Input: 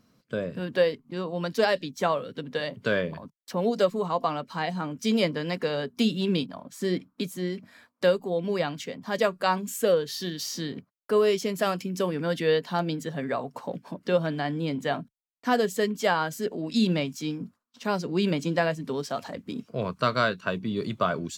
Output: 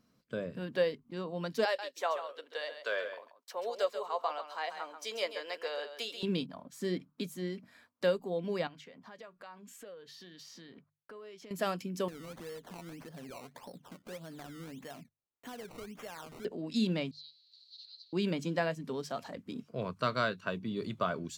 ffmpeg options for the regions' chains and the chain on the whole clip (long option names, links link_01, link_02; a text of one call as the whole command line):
ffmpeg -i in.wav -filter_complex "[0:a]asettb=1/sr,asplit=3[link_01][link_02][link_03];[link_01]atrim=end=1.654[link_04];[link_02]atrim=start=1.65:end=6.23,asetpts=PTS-STARTPTS,afade=type=in:duration=0.004:curve=qsin,afade=type=out:start_time=4.576:duration=0.004:curve=qsin,highpass=frequency=490:width=0.5412,highpass=frequency=490:width=1.3066,aecho=1:1:136:0.335,atrim=end_sample=201978[link_05];[link_03]atrim=start=6.226[link_06];[link_04][link_05]acrossfade=duration=0.004:curve1=hsin:curve2=qsin[link_07];[link_07][link_06]acrossfade=duration=0.004:curve1=qsin:curve2=hsin,asettb=1/sr,asplit=3[link_08][link_09][link_10];[link_08]atrim=end=8.674[link_11];[link_09]atrim=start=8.67:end=11.51,asetpts=PTS-STARTPTS,afade=type=in:duration=0.004:curve=qsin,afade=type=out:start_time=2.836:duration=0.004:curve=qsin,lowpass=frequency=1100:poles=1,tiltshelf=frequency=740:gain=-7.5,acompressor=threshold=-42dB:ratio=4:attack=3.2:release=140:knee=1:detection=peak[link_12];[link_10]atrim=start=11.506[link_13];[link_11][link_12]acrossfade=duration=0.004:curve1=hsin:curve2=qsin[link_14];[link_14][link_13]acrossfade=duration=0.004:curve1=qsin:curve2=hsin,asettb=1/sr,asplit=3[link_15][link_16][link_17];[link_15]atrim=end=12.084[link_18];[link_16]atrim=start=12.08:end=16.45,asetpts=PTS-STARTPTS,afade=type=in:duration=0.004:curve=qsin,afade=type=out:start_time=4.366:duration=0.004:curve=qsin,acompressor=threshold=-39dB:ratio=3:attack=3.2:release=140:knee=1:detection=peak,acrusher=samples=18:mix=1:aa=0.000001:lfo=1:lforange=18:lforate=1.7[link_19];[link_17]atrim=start=16.446[link_20];[link_18][link_19]acrossfade=duration=0.004:curve1=hsin:curve2=qsin[link_21];[link_21][link_20]acrossfade=duration=0.004:curve1=qsin:curve2=hsin,asettb=1/sr,asplit=3[link_22][link_23][link_24];[link_22]atrim=end=17.114[link_25];[link_23]atrim=start=17.11:end=18.13,asetpts=PTS-STARTPTS,afade=type=in:duration=0.004:curve=qsin,afade=type=out:start_time=1.016:duration=0.004:curve=qsin,aeval=exprs='val(0)+0.5*0.0355*sgn(val(0))':channel_layout=same,asuperpass=centerf=4200:order=4:qfactor=6.9[link_26];[link_24]atrim=start=18.126[link_27];[link_25][link_26]acrossfade=duration=0.004:curve1=hsin:curve2=qsin[link_28];[link_28][link_27]acrossfade=duration=0.004:curve1=qsin:curve2=hsin,deesser=0.55,bandreject=frequency=50:width_type=h:width=6,bandreject=frequency=100:width_type=h:width=6,bandreject=frequency=150:width_type=h:width=6,volume=-7dB" out.wav